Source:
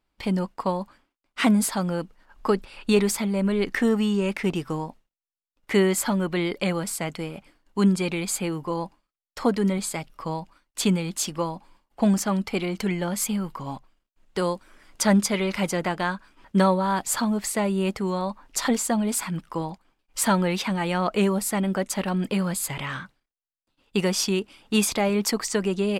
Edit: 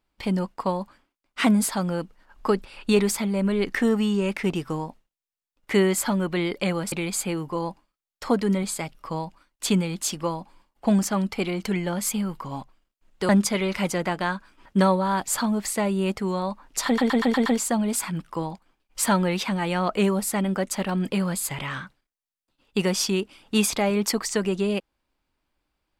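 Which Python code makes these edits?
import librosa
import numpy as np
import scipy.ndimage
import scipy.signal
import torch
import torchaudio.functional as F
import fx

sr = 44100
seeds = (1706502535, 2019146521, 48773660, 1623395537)

y = fx.edit(x, sr, fx.cut(start_s=6.92, length_s=1.15),
    fx.cut(start_s=14.44, length_s=0.64),
    fx.stutter(start_s=18.65, slice_s=0.12, count=6), tone=tone)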